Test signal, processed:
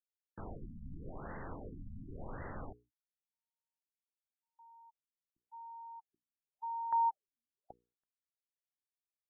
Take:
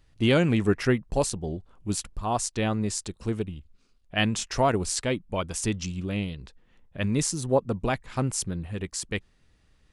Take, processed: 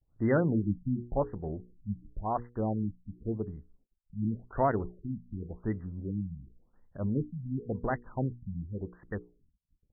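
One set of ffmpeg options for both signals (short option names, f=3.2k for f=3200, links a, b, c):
-af "bandreject=f=60:t=h:w=6,bandreject=f=120:t=h:w=6,bandreject=f=180:t=h:w=6,bandreject=f=240:t=h:w=6,bandreject=f=300:t=h:w=6,bandreject=f=360:t=h:w=6,bandreject=f=420:t=h:w=6,bandreject=f=480:t=h:w=6,agate=range=-29dB:threshold=-59dB:ratio=16:detection=peak,afftfilt=real='re*lt(b*sr/1024,250*pow(2100/250,0.5+0.5*sin(2*PI*0.91*pts/sr)))':imag='im*lt(b*sr/1024,250*pow(2100/250,0.5+0.5*sin(2*PI*0.91*pts/sr)))':win_size=1024:overlap=0.75,volume=-4dB"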